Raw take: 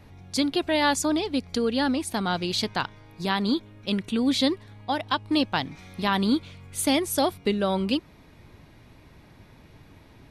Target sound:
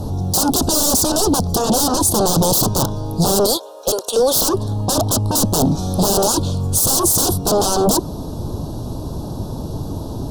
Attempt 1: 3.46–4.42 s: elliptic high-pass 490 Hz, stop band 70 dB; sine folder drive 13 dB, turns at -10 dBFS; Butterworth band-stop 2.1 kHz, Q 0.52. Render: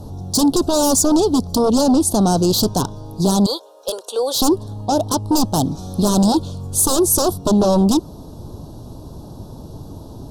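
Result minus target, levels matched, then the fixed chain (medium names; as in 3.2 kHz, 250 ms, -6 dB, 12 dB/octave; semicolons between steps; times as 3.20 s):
sine folder: distortion -23 dB
3.46–4.42 s: elliptic high-pass 490 Hz, stop band 70 dB; sine folder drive 22 dB, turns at -10 dBFS; Butterworth band-stop 2.1 kHz, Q 0.52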